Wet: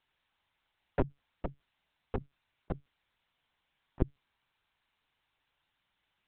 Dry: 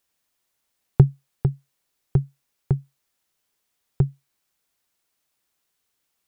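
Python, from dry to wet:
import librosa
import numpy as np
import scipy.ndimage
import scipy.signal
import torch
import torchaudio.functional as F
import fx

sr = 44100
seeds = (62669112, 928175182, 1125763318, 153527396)

y = scipy.signal.sosfilt(scipy.signal.butter(2, 510.0, 'highpass', fs=sr, output='sos'), x)
y = fx.lpc_vocoder(y, sr, seeds[0], excitation='pitch_kept', order=10)
y = y * 10.0 ** (3.0 / 20.0)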